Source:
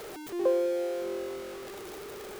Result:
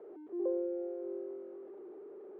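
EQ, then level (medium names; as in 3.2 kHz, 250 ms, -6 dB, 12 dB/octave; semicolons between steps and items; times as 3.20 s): ladder band-pass 400 Hz, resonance 50%; distance through air 200 m; +1.0 dB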